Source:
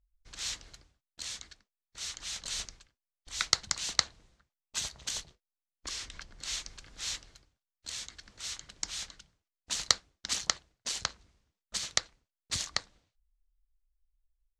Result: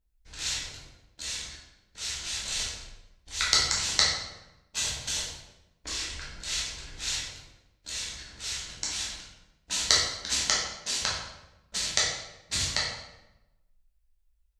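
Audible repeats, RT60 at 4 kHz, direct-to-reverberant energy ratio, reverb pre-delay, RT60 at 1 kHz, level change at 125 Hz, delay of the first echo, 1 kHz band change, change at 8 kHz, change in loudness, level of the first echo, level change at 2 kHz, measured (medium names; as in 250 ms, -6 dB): no echo, 0.70 s, -6.5 dB, 7 ms, 0.90 s, +9.0 dB, no echo, +5.5 dB, +5.5 dB, +5.5 dB, no echo, +7.0 dB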